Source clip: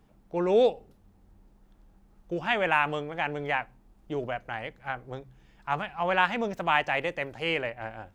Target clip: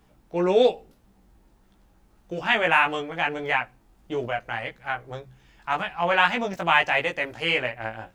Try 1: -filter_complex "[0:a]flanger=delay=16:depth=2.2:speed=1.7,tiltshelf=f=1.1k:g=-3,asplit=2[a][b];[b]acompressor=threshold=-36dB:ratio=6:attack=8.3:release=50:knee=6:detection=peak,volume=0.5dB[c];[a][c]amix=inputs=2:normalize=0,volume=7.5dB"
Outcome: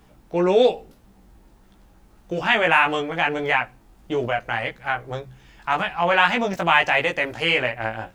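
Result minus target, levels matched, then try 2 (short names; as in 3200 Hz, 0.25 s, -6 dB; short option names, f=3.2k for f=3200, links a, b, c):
compressor: peak gain reduction +13.5 dB
-af "flanger=delay=16:depth=2.2:speed=1.7,tiltshelf=f=1.1k:g=-3,volume=7.5dB"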